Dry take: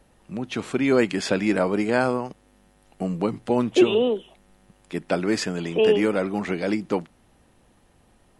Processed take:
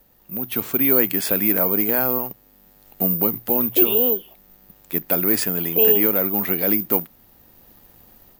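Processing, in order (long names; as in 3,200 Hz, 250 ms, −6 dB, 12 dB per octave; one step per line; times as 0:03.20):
mains-hum notches 60/120 Hz
in parallel at +0.5 dB: brickwall limiter −15.5 dBFS, peak gain reduction 9.5 dB
on the sum: automatic gain control gain up to 7.5 dB
bad sample-rate conversion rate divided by 3×, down none, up zero stuff
level −9.5 dB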